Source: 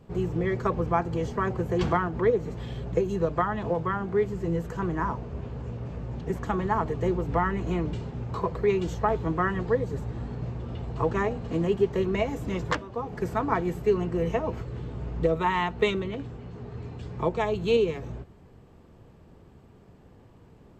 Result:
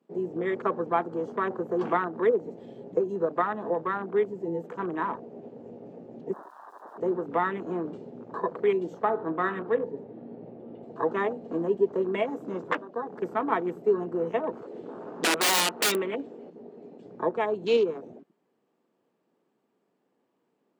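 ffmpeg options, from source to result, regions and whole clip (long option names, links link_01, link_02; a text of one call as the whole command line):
ffmpeg -i in.wav -filter_complex "[0:a]asettb=1/sr,asplit=3[link_01][link_02][link_03];[link_01]atrim=end=6.334[link_04];[link_02]atrim=start=6.33:end=6.98,asetpts=PTS-STARTPTS,afade=type=in:duration=0.004:curve=qsin,afade=type=out:start_time=0.646:duration=0.004:curve=qsin,acompressor=threshold=-30dB:ratio=8:attack=3.2:release=140:knee=1:detection=peak,aeval=exprs='(mod(89.1*val(0)+1,2)-1)/89.1':channel_layout=same,highshelf=frequency=1500:width_type=q:width=3:gain=-12.5[link_05];[link_03]atrim=start=6.976[link_06];[link_04][link_05]acrossfade=duration=0.004:curve1=hsin:curve2=qsin[link_07];[link_07][link_06]acrossfade=duration=0.004:curve1=qsin:curve2=hsin,asettb=1/sr,asplit=3[link_08][link_09][link_10];[link_08]atrim=end=9.054[link_11];[link_09]atrim=start=9.05:end=10.83,asetpts=PTS-STARTPTS,afade=type=in:duration=0.004:curve=qsin,afade=type=out:start_time=1.776:duration=0.004:curve=qsin,lowpass=2900,bandreject=frequency=50.42:width_type=h:width=4,bandreject=frequency=100.84:width_type=h:width=4,bandreject=frequency=151.26:width_type=h:width=4,bandreject=frequency=201.68:width_type=h:width=4,bandreject=frequency=252.1:width_type=h:width=4,bandreject=frequency=302.52:width_type=h:width=4,bandreject=frequency=352.94:width_type=h:width=4,bandreject=frequency=403.36:width_type=h:width=4,bandreject=frequency=453.78:width_type=h:width=4,bandreject=frequency=504.2:width_type=h:width=4,bandreject=frequency=554.62:width_type=h:width=4,bandreject=frequency=605.04:width_type=h:width=4,bandreject=frequency=655.46:width_type=h:width=4,bandreject=frequency=705.88:width_type=h:width=4,bandreject=frequency=756.3:width_type=h:width=4,bandreject=frequency=806.72:width_type=h:width=4,bandreject=frequency=857.14:width_type=h:width=4,bandreject=frequency=907.56:width_type=h:width=4,bandreject=frequency=957.98:width_type=h:width=4,bandreject=frequency=1008.4:width_type=h:width=4,bandreject=frequency=1058.82:width_type=h:width=4,bandreject=frequency=1109.24:width_type=h:width=4,bandreject=frequency=1159.66:width_type=h:width=4,bandreject=frequency=1210.08:width_type=h:width=4,bandreject=frequency=1260.5:width_type=h:width=4,bandreject=frequency=1310.92:width_type=h:width=4,bandreject=frequency=1361.34:width_type=h:width=4,bandreject=frequency=1411.76:width_type=h:width=4,bandreject=frequency=1462.18:width_type=h:width=4,bandreject=frequency=1512.6:width_type=h:width=4,bandreject=frequency=1563.02:width_type=h:width=4,bandreject=frequency=1613.44:width_type=h:width=4,bandreject=frequency=1663.86:width_type=h:width=4,bandreject=frequency=1714.28:width_type=h:width=4,bandreject=frequency=1764.7:width_type=h:width=4[link_12];[link_10]atrim=start=10.826[link_13];[link_11][link_12]acrossfade=duration=0.004:curve1=hsin:curve2=qsin[link_14];[link_14][link_13]acrossfade=duration=0.004:curve1=qsin:curve2=hsin,asettb=1/sr,asplit=3[link_15][link_16][link_17];[link_15]atrim=end=14.624[link_18];[link_16]atrim=start=14.62:end=16.5,asetpts=PTS-STARTPTS,afade=type=in:duration=0.004:curve=qsin,afade=type=out:start_time=1.876:duration=0.004:curve=qsin,highpass=frequency=380:poles=1,acontrast=76,aeval=exprs='(mod(7.5*val(0)+1,2)-1)/7.5':channel_layout=same[link_19];[link_17]atrim=start=16.496[link_20];[link_18][link_19]acrossfade=duration=0.004:curve1=hsin:curve2=qsin[link_21];[link_21][link_20]acrossfade=duration=0.004:curve1=qsin:curve2=hsin,highpass=frequency=230:width=0.5412,highpass=frequency=230:width=1.3066,afwtdn=0.0126" out.wav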